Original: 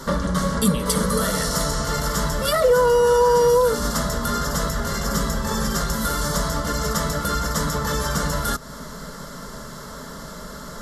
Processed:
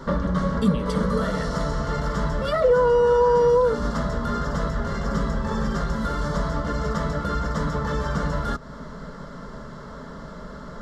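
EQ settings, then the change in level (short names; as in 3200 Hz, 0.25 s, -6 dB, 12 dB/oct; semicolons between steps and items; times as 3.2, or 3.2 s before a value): tape spacing loss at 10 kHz 26 dB; 0.0 dB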